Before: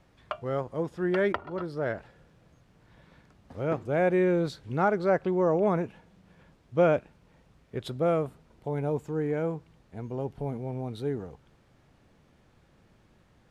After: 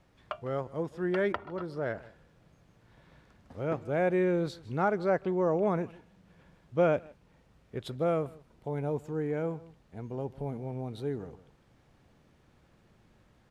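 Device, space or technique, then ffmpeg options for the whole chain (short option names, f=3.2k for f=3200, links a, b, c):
ducked delay: -filter_complex "[0:a]asplit=3[a][b][c];[b]adelay=155,volume=-4.5dB[d];[c]apad=whole_len=602610[e];[d][e]sidechaincompress=threshold=-45dB:ratio=8:attack=16:release=440[f];[a][f]amix=inputs=2:normalize=0,volume=-3dB"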